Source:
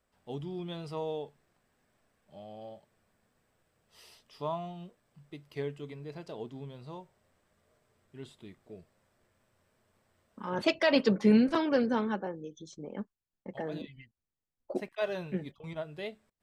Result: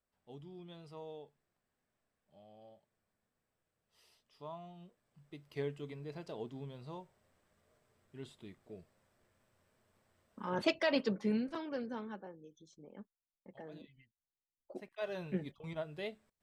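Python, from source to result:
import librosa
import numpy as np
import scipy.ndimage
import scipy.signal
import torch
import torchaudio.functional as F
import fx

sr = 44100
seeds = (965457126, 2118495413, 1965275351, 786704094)

y = fx.gain(x, sr, db=fx.line((4.47, -12.5), (5.62, -2.5), (10.54, -2.5), (11.49, -13.0), (14.74, -13.0), (15.32, -2.5)))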